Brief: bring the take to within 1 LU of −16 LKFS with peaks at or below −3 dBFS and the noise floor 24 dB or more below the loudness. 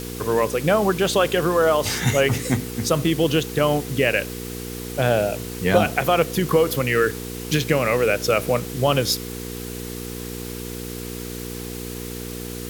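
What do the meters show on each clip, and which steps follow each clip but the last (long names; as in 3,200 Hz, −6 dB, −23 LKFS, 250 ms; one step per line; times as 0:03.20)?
mains hum 60 Hz; hum harmonics up to 480 Hz; level of the hum −30 dBFS; background noise floor −32 dBFS; target noise floor −46 dBFS; integrated loudness −22.0 LKFS; sample peak −3.5 dBFS; target loudness −16.0 LKFS
→ hum removal 60 Hz, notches 8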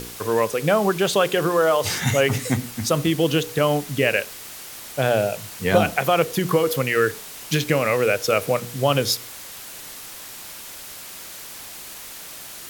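mains hum none found; background noise floor −38 dBFS; target noise floor −45 dBFS
→ broadband denoise 7 dB, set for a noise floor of −38 dBFS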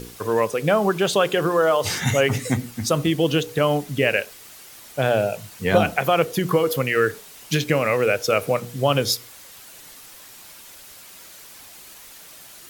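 background noise floor −44 dBFS; target noise floor −45 dBFS
→ broadband denoise 6 dB, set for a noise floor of −44 dBFS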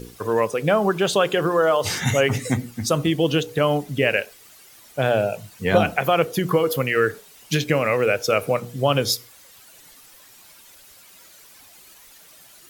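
background noise floor −49 dBFS; integrated loudness −21.5 LKFS; sample peak −4.5 dBFS; target loudness −16.0 LKFS
→ level +5.5 dB
brickwall limiter −3 dBFS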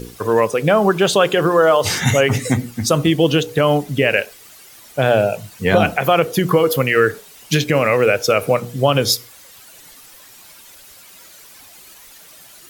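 integrated loudness −16.5 LKFS; sample peak −3.0 dBFS; background noise floor −44 dBFS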